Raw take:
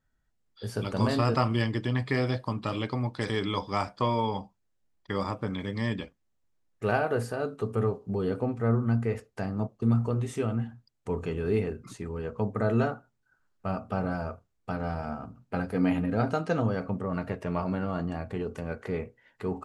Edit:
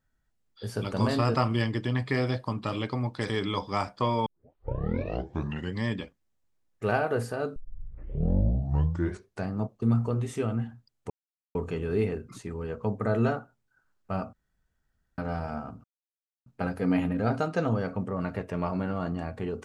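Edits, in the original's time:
0:04.26: tape start 1.57 s
0:07.56: tape start 1.93 s
0:11.10: splice in silence 0.45 s
0:13.88–0:14.73: fill with room tone
0:15.39: splice in silence 0.62 s

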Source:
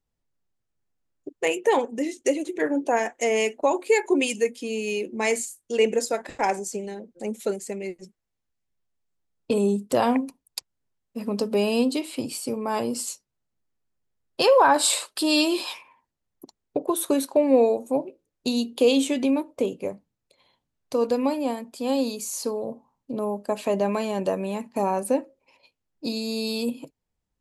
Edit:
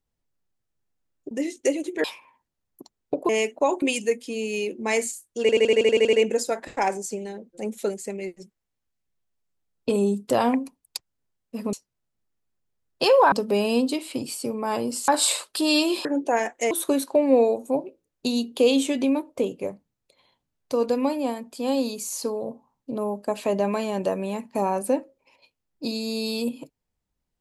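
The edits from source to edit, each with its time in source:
0:01.31–0:01.92: remove
0:02.65–0:03.31: swap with 0:15.67–0:16.92
0:03.84–0:04.16: remove
0:05.75: stutter 0.08 s, 10 plays
0:13.11–0:14.70: move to 0:11.35

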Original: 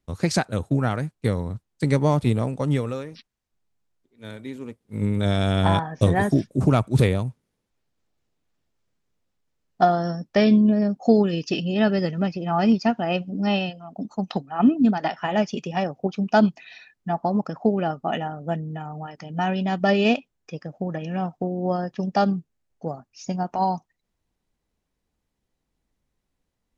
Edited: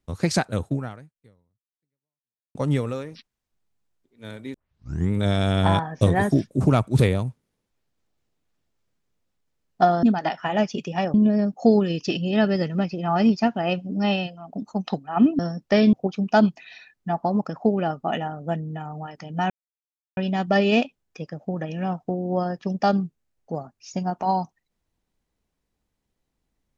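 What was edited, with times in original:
0:00.67–0:02.55: fade out exponential
0:04.54: tape start 0.57 s
0:10.03–0:10.57: swap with 0:14.82–0:15.93
0:19.50: splice in silence 0.67 s

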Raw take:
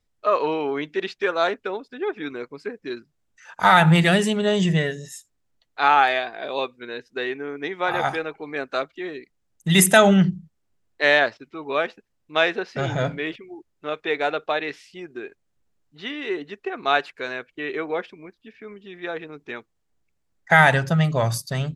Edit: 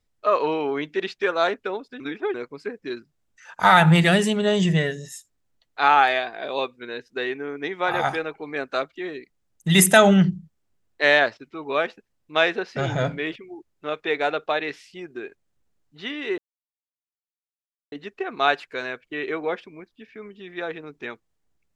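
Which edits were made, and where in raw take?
0:02.00–0:02.34: reverse
0:16.38: splice in silence 1.54 s

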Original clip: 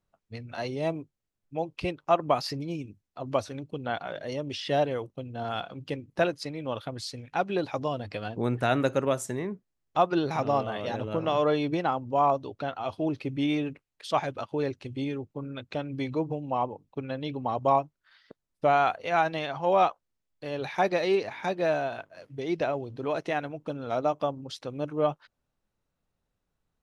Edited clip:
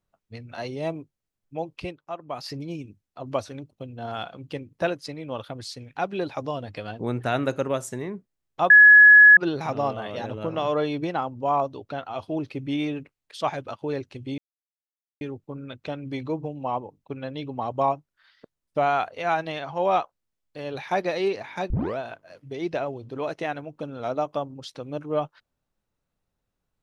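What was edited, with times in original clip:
0:01.75–0:02.57: duck −11.5 dB, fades 0.28 s
0:03.72–0:05.09: remove
0:10.07: insert tone 1,690 Hz −7.5 dBFS 0.67 s
0:15.08: splice in silence 0.83 s
0:21.57: tape start 0.28 s

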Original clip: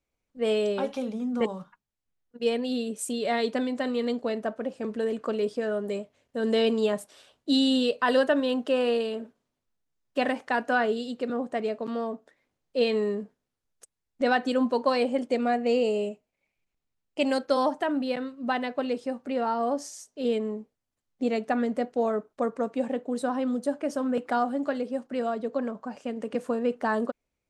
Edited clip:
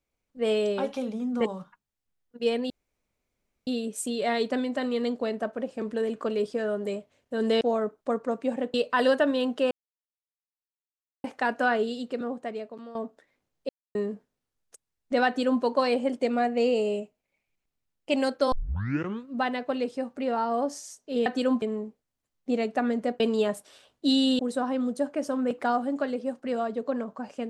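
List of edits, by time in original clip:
0:02.70: splice in room tone 0.97 s
0:06.64–0:07.83: swap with 0:21.93–0:23.06
0:08.80–0:10.33: silence
0:11.07–0:12.04: fade out, to −15 dB
0:12.78–0:13.04: silence
0:14.36–0:14.72: duplicate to 0:20.35
0:17.61: tape start 0.75 s

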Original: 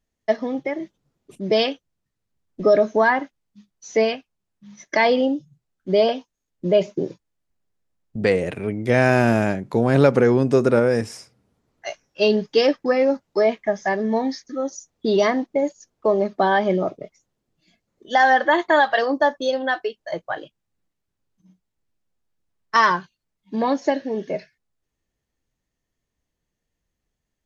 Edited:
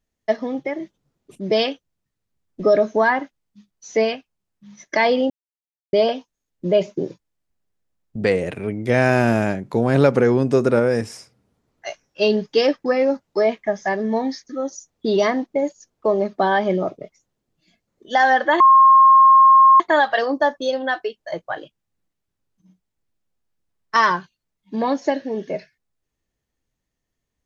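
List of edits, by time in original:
0:05.30–0:05.93: silence
0:18.60: insert tone 1,070 Hz −7 dBFS 1.20 s

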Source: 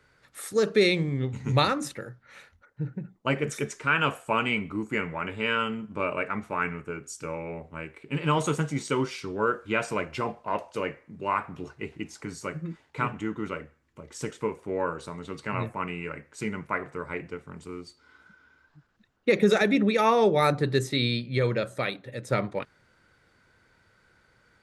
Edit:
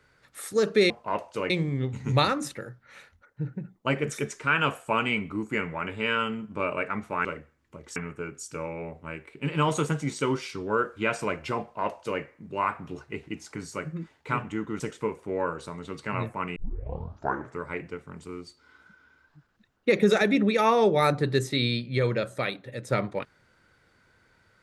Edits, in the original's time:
0:10.30–0:10.90: duplicate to 0:00.90
0:13.49–0:14.20: move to 0:06.65
0:15.96: tape start 1.04 s

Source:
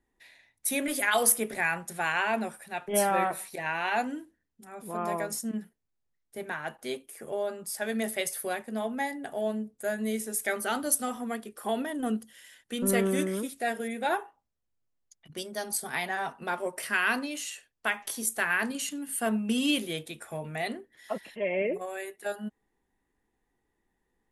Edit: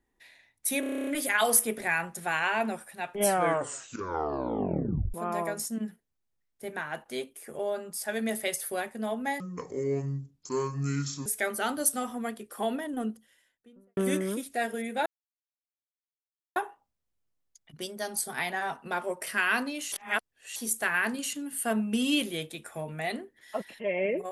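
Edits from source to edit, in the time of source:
0:00.80: stutter 0.03 s, 10 plays
0:02.98: tape stop 1.89 s
0:09.13–0:10.32: play speed 64%
0:11.63–0:13.03: fade out and dull
0:14.12: splice in silence 1.50 s
0:17.48–0:18.12: reverse

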